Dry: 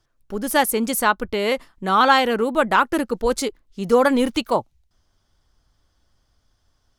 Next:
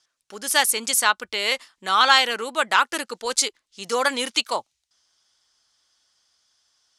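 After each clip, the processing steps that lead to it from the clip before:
meter weighting curve ITU-R 468
level −3 dB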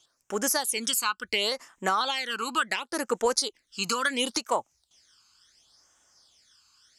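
downward compressor 12 to 1, threshold −28 dBFS, peak gain reduction 18.5 dB
all-pass phaser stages 12, 0.71 Hz, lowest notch 590–4,300 Hz
level +8 dB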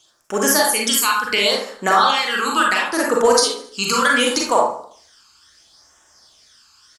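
repeating echo 73 ms, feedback 51%, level −18.5 dB
convolution reverb RT60 0.50 s, pre-delay 32 ms, DRR −2.5 dB
level +7 dB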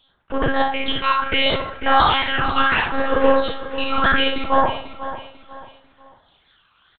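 one-pitch LPC vocoder at 8 kHz 270 Hz
repeating echo 494 ms, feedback 34%, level −13 dB

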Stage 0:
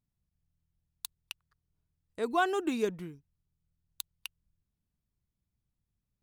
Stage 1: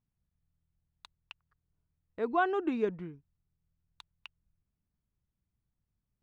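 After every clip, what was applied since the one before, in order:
low-pass filter 2,100 Hz 12 dB per octave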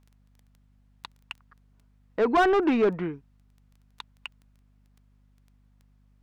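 mid-hump overdrive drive 23 dB, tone 1,600 Hz, clips at −17 dBFS
surface crackle 10 per second −48 dBFS
mains hum 50 Hz, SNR 31 dB
level +4 dB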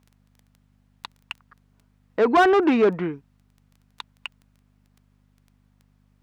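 high-pass filter 110 Hz 6 dB per octave
level +4.5 dB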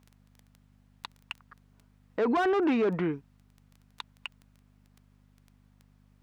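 brickwall limiter −21 dBFS, peak gain reduction 11.5 dB

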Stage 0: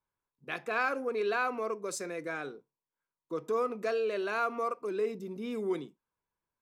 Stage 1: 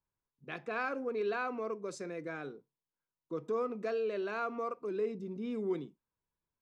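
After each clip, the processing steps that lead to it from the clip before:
low-pass filter 6,100 Hz 12 dB per octave
low-shelf EQ 350 Hz +9.5 dB
level −6.5 dB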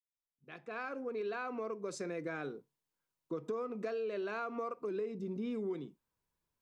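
fade in at the beginning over 2.19 s
downward compressor, threshold −39 dBFS, peak gain reduction 10 dB
level +4 dB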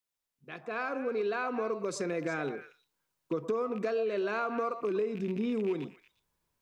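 loose part that buzzes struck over −44 dBFS, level −44 dBFS
echo through a band-pass that steps 117 ms, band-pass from 790 Hz, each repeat 1.4 octaves, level −7 dB
level +6.5 dB

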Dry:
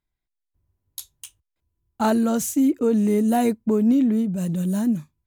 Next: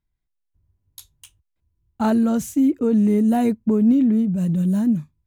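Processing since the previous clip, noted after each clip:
bass and treble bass +8 dB, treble −5 dB
level −2 dB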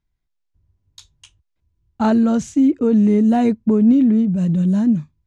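low-pass filter 6,900 Hz 24 dB per octave
level +3 dB

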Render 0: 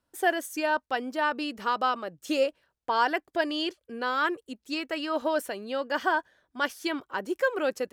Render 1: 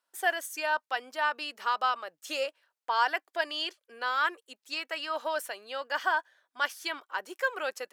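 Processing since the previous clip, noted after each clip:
high-pass filter 790 Hz 12 dB per octave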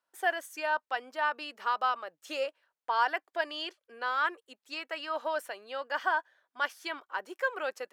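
high-shelf EQ 3,200 Hz −9 dB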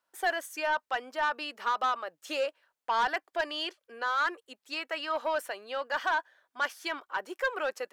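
soft clipping −24.5 dBFS, distortion −13 dB
level +3.5 dB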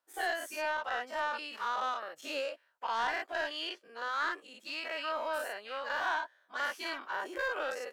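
every bin's largest magnitude spread in time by 120 ms
level −9 dB

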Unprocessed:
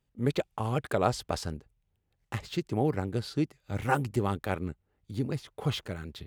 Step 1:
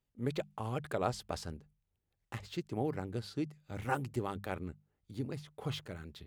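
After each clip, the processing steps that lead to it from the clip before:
mains-hum notches 50/100/150/200 Hz
level −7 dB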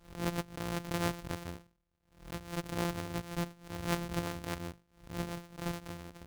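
samples sorted by size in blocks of 256 samples
background raised ahead of every attack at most 130 dB per second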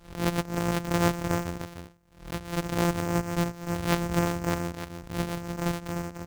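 stylus tracing distortion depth 0.27 ms
single-tap delay 302 ms −7 dB
level +7.5 dB

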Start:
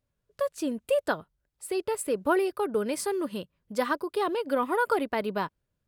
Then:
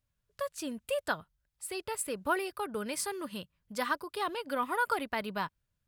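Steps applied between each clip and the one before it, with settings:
parametric band 390 Hz −10.5 dB 1.9 octaves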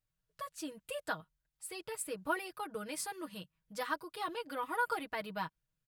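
comb filter 6.3 ms, depth 93%
level −7.5 dB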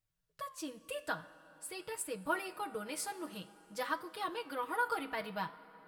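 flanger 0.49 Hz, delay 9 ms, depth 9.7 ms, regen +79%
dense smooth reverb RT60 5 s, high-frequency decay 0.6×, DRR 16.5 dB
level +4.5 dB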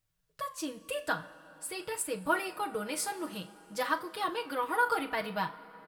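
double-tracking delay 39 ms −14 dB
level +5.5 dB

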